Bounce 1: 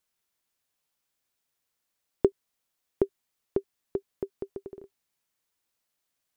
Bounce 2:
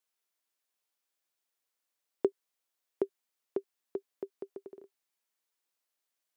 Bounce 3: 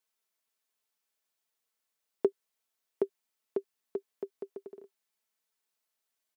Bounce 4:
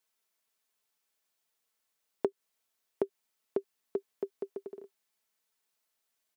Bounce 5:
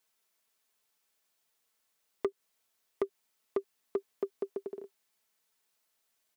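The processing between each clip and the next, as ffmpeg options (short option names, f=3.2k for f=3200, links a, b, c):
-af "highpass=300,volume=-4.5dB"
-af "aecho=1:1:4.6:0.46"
-af "acompressor=threshold=-29dB:ratio=6,volume=3dB"
-af "asoftclip=type=tanh:threshold=-25.5dB,volume=3.5dB"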